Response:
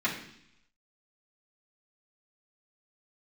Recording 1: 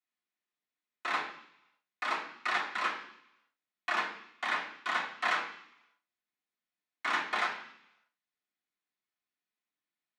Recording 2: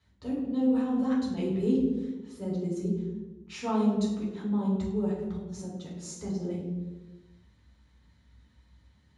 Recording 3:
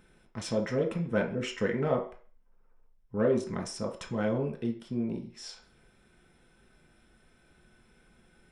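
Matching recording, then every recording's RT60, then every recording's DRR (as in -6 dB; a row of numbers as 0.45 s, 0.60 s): 1; 0.70 s, 1.2 s, 0.40 s; -9.0 dB, -6.5 dB, 1.0 dB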